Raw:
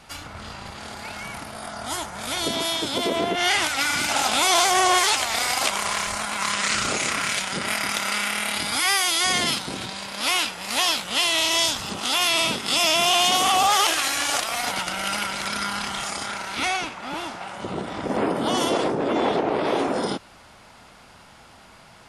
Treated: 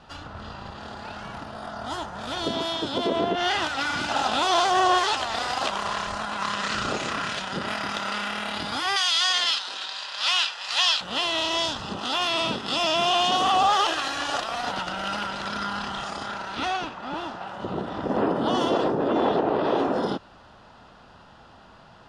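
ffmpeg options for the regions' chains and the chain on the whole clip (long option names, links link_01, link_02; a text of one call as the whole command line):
ffmpeg -i in.wav -filter_complex "[0:a]asettb=1/sr,asplit=3[link_01][link_02][link_03];[link_01]atrim=end=8.964[link_04];[link_02]atrim=start=8.96:end=11.01,asetpts=PTS-STARTPTS,afade=type=in:duration=0.004:curve=qsin,afade=type=out:start_time=2.046:duration=0.004:curve=qsin,highpass=600,lowpass=7900,tiltshelf=frequency=1200:gain=-9[link_05];[link_03]atrim=start=11.006[link_06];[link_04][link_05]acrossfade=duration=0.004:curve1=hsin:curve2=qsin[link_07];[link_07][link_06]acrossfade=duration=0.004:curve1=qsin:curve2=hsin,lowpass=3500,equalizer=frequency=2200:width_type=o:width=0.64:gain=-5.5,bandreject=frequency=2200:width=6.9" out.wav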